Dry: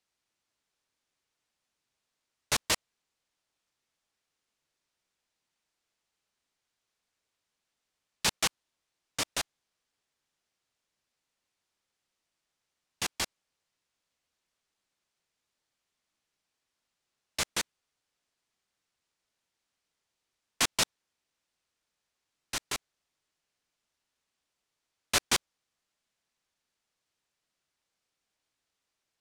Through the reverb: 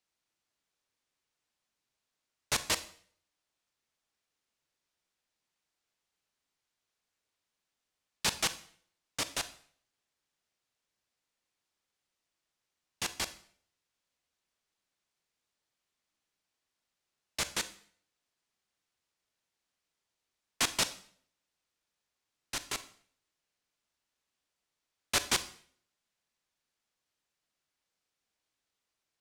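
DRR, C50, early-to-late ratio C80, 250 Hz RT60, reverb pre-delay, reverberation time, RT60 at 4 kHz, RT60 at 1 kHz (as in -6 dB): 12.0 dB, 15.0 dB, 18.0 dB, 0.55 s, 30 ms, 0.55 s, 0.50 s, 0.50 s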